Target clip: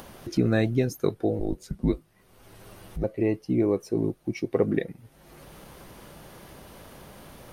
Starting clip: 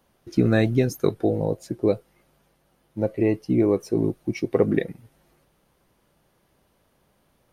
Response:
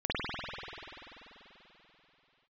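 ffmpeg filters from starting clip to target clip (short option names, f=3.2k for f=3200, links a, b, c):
-filter_complex "[0:a]acompressor=mode=upward:threshold=-24dB:ratio=2.5,asettb=1/sr,asplit=3[a][b][c];[a]atrim=end=1.394[d];[b]atrim=start=1.39:end=3.04,asetpts=PTS-STARTPTS,afade=t=in:d=0.004:c=qsin,afade=t=out:st=1.646:d=0.004:c=qsin,afreqshift=-160[e];[c]atrim=start=3.036[f];[d][e]acrossfade=d=0.004:c1=hsin:c2=qsin[g];[g][f]acrossfade=d=0.004:c1=qsin:c2=hsin,volume=-3.5dB"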